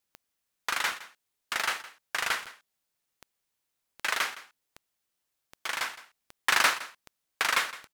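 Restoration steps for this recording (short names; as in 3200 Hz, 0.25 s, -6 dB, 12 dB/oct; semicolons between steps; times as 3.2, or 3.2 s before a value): de-click; inverse comb 0.164 s -17 dB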